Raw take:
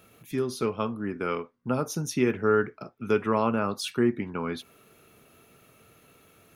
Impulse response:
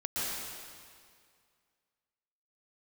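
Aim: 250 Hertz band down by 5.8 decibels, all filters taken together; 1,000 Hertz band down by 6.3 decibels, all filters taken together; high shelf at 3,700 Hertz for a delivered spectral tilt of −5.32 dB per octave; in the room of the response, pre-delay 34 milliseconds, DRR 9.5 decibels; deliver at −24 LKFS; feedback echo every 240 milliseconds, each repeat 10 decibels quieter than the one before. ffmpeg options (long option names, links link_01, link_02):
-filter_complex "[0:a]equalizer=frequency=250:width_type=o:gain=-7,equalizer=frequency=1000:width_type=o:gain=-7.5,highshelf=frequency=3700:gain=-6.5,aecho=1:1:240|480|720|960:0.316|0.101|0.0324|0.0104,asplit=2[link_01][link_02];[1:a]atrim=start_sample=2205,adelay=34[link_03];[link_02][link_03]afir=irnorm=-1:irlink=0,volume=-16dB[link_04];[link_01][link_04]amix=inputs=2:normalize=0,volume=7.5dB"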